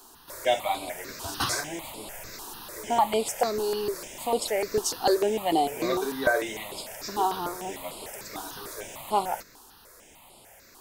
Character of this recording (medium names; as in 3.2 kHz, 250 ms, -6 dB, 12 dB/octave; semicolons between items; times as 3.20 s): notches that jump at a steady rate 6.7 Hz 570–6000 Hz